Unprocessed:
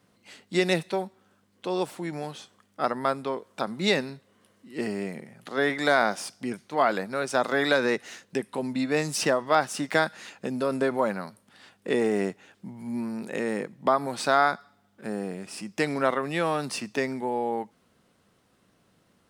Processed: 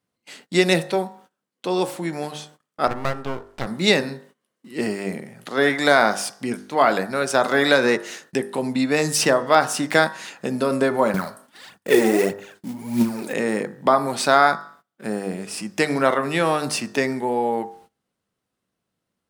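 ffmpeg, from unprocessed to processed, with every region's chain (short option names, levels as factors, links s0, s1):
-filter_complex "[0:a]asettb=1/sr,asplit=3[s0][s1][s2];[s0]atrim=end=2.874[s3];[s1]atrim=start=2.87:end=3.66,asetpts=PTS-STARTPTS,afade=t=in:d=0.004:c=qsin,afade=t=out:st=0.786:d=0.004:c=qsin,lowpass=f=3400:p=1,aeval=exprs='max(val(0),0)':c=same[s4];[s2]atrim=start=3.656[s5];[s3][s4]acrossfade=d=0.004:c1=hsin:c2=qsin[s6];[s6][s5]acrossfade=d=0.004:c1=qsin:c2=hsin,asettb=1/sr,asplit=3[s7][s8][s9];[s7]atrim=end=11.144[s10];[s8]atrim=start=11.14:end=13.33,asetpts=PTS-STARTPTS,afade=t=in:d=0.004:c=qsin,afade=t=out:st=2.186:d=0.004:c=qsin,aphaser=in_gain=1:out_gain=1:delay=4.1:decay=0.68:speed=1.6:type=triangular,acrusher=bits=5:mode=log:mix=0:aa=0.000001[s11];[s9]atrim=start=13.326[s12];[s10][s11]acrossfade=d=0.004:c1=hsin:c2=qsin[s13];[s13][s12]acrossfade=d=0.004:c1=qsin:c2=hsin,highshelf=f=8100:g=4.5,bandreject=f=50.1:t=h:w=4,bandreject=f=100.2:t=h:w=4,bandreject=f=150.3:t=h:w=4,bandreject=f=200.4:t=h:w=4,bandreject=f=250.5:t=h:w=4,bandreject=f=300.6:t=h:w=4,bandreject=f=350.7:t=h:w=4,bandreject=f=400.8:t=h:w=4,bandreject=f=450.9:t=h:w=4,bandreject=f=501:t=h:w=4,bandreject=f=551.1:t=h:w=4,bandreject=f=601.2:t=h:w=4,bandreject=f=651.3:t=h:w=4,bandreject=f=701.4:t=h:w=4,bandreject=f=751.5:t=h:w=4,bandreject=f=801.6:t=h:w=4,bandreject=f=851.7:t=h:w=4,bandreject=f=901.8:t=h:w=4,bandreject=f=951.9:t=h:w=4,bandreject=f=1002:t=h:w=4,bandreject=f=1052.1:t=h:w=4,bandreject=f=1102.2:t=h:w=4,bandreject=f=1152.3:t=h:w=4,bandreject=f=1202.4:t=h:w=4,bandreject=f=1252.5:t=h:w=4,bandreject=f=1302.6:t=h:w=4,bandreject=f=1352.7:t=h:w=4,bandreject=f=1402.8:t=h:w=4,bandreject=f=1452.9:t=h:w=4,bandreject=f=1503:t=h:w=4,bandreject=f=1553.1:t=h:w=4,bandreject=f=1603.2:t=h:w=4,bandreject=f=1653.3:t=h:w=4,bandreject=f=1703.4:t=h:w=4,bandreject=f=1753.5:t=h:w=4,bandreject=f=1803.6:t=h:w=4,bandreject=f=1853.7:t=h:w=4,bandreject=f=1903.8:t=h:w=4,agate=range=0.0891:threshold=0.002:ratio=16:detection=peak,volume=2.11"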